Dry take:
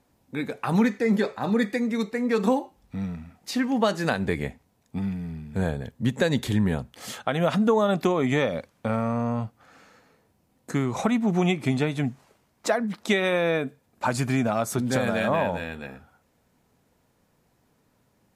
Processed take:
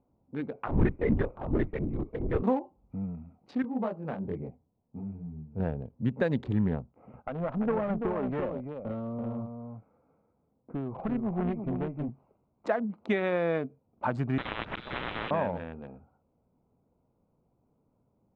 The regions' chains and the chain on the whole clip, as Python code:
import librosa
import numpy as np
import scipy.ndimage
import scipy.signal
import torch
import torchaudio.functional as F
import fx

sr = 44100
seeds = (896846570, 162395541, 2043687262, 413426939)

y = fx.chain(x, sr, fx.lpc_vocoder(seeds[0], excitation='whisper', order=10),
    fx.band_widen(depth_pct=40), at=(0.67, 2.43))
y = fx.chain(y, sr, fx.high_shelf(hz=2400.0, db=-11.5),
    fx.detune_double(cents=45), at=(3.62, 5.6))
y = fx.chain(y, sr, fx.steep_lowpass(hz=2500.0, slope=48),
    fx.echo_single(ms=337, db=-6.5),
    fx.tube_stage(drive_db=16.0, bias=0.65), at=(6.8, 12.1))
y = fx.chain(y, sr, fx.freq_invert(carrier_hz=3700),
    fx.auto_swell(attack_ms=122.0),
    fx.spectral_comp(ratio=10.0), at=(14.38, 15.31))
y = fx.wiener(y, sr, points=25)
y = scipy.signal.sosfilt(scipy.signal.butter(2, 2000.0, 'lowpass', fs=sr, output='sos'), y)
y = fx.end_taper(y, sr, db_per_s=420.0)
y = y * 10.0 ** (-4.0 / 20.0)